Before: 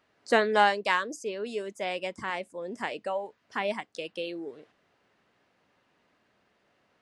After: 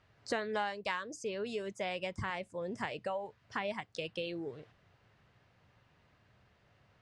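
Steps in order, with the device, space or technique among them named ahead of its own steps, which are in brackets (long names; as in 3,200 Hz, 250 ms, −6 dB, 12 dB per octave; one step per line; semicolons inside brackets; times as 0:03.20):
jukebox (low-pass filter 7,300 Hz 12 dB per octave; low shelf with overshoot 170 Hz +13 dB, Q 1.5; downward compressor 4 to 1, threshold −34 dBFS, peak gain reduction 14.5 dB)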